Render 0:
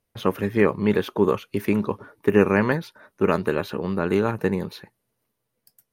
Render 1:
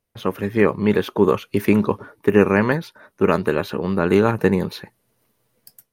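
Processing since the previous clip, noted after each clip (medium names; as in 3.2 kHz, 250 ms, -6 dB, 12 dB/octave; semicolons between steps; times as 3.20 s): level rider gain up to 12.5 dB; trim -1 dB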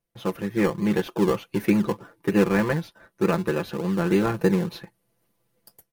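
comb 5.9 ms, depth 81%; in parallel at -9 dB: decimation with a swept rate 28×, swing 60% 3.3 Hz; on the sum: trim -8.5 dB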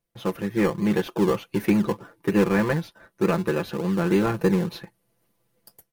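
saturation -10 dBFS, distortion -22 dB; trim +1 dB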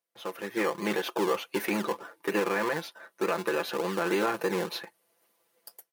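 high-pass 490 Hz 12 dB/octave; peak limiter -20.5 dBFS, peak gain reduction 9 dB; level rider gain up to 7 dB; trim -3.5 dB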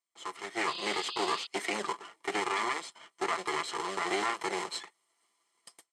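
comb filter that takes the minimum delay 0.96 ms; painted sound noise, 0.67–1.47 s, 2.5–5 kHz -41 dBFS; cabinet simulation 380–8700 Hz, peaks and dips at 410 Hz +6 dB, 860 Hz -4 dB, 8 kHz +8 dB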